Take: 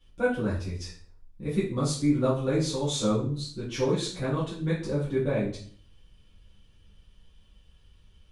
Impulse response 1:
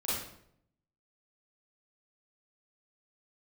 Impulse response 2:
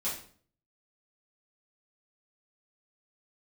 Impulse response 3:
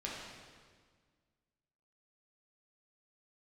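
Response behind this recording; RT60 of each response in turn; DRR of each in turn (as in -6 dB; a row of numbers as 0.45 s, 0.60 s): 2; 0.70 s, 0.50 s, 1.7 s; -9.5 dB, -9.5 dB, -5.5 dB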